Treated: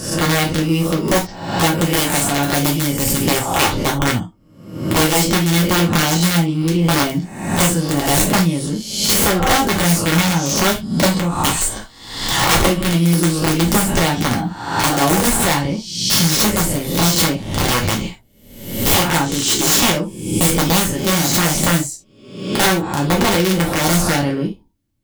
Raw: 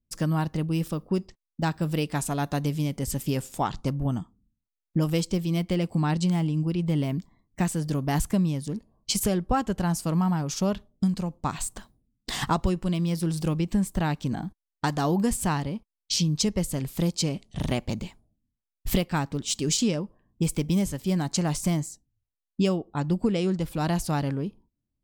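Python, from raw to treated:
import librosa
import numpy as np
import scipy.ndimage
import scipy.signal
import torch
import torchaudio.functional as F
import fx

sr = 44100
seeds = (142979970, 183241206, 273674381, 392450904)

p1 = fx.spec_swells(x, sr, rise_s=0.78)
p2 = fx.rider(p1, sr, range_db=5, speed_s=0.5)
p3 = p1 + (p2 * 10.0 ** (-2.0 / 20.0))
p4 = (np.mod(10.0 ** (11.5 / 20.0) * p3 + 1.0, 2.0) - 1.0) / 10.0 ** (11.5 / 20.0)
p5 = fx.rev_gated(p4, sr, seeds[0], gate_ms=100, shape='falling', drr_db=-1.0)
y = p5 * 10.0 ** (1.0 / 20.0)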